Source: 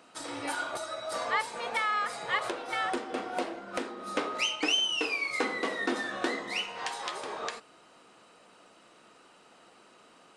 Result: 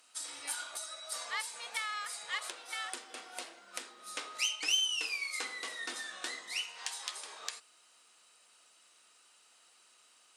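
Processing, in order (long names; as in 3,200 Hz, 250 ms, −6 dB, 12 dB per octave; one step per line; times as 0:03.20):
harmonic generator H 3 −27 dB, 7 −43 dB, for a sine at −14.5 dBFS
first-order pre-emphasis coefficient 0.97
level +5.5 dB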